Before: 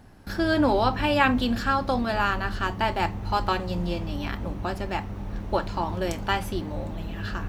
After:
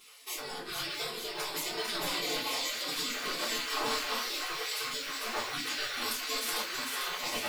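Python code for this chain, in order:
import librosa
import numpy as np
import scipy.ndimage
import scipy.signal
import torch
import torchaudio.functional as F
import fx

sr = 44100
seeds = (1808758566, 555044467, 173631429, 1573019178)

y = fx.spec_gate(x, sr, threshold_db=-30, keep='weak')
y = fx.peak_eq(y, sr, hz=270.0, db=12.5, octaves=1.8)
y = fx.over_compress(y, sr, threshold_db=-47.0, ratio=-0.5)
y = fx.echo_wet_highpass(y, sr, ms=449, feedback_pct=66, hz=2400.0, wet_db=-4.0)
y = fx.room_shoebox(y, sr, seeds[0], volume_m3=130.0, walls='furnished', distance_m=3.6)
y = F.gain(torch.from_numpy(y), 5.5).numpy()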